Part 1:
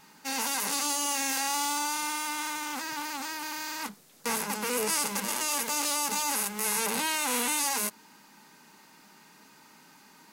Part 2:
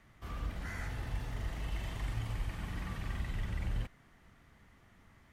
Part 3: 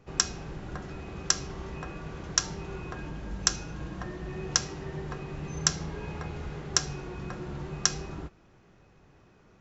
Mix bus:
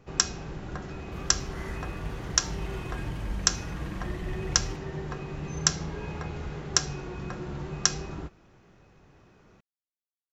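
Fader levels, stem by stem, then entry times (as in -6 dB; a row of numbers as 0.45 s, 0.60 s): mute, 0.0 dB, +1.5 dB; mute, 0.90 s, 0.00 s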